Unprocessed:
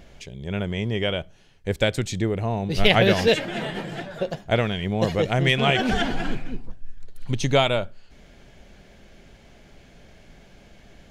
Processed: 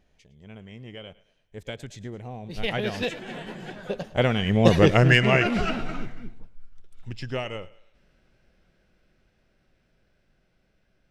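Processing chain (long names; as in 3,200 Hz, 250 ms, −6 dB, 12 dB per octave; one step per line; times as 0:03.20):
source passing by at 0:04.78, 26 m/s, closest 8.5 metres
feedback echo with a high-pass in the loop 108 ms, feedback 46%, high-pass 310 Hz, level −19 dB
formants moved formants −2 semitones
level +6 dB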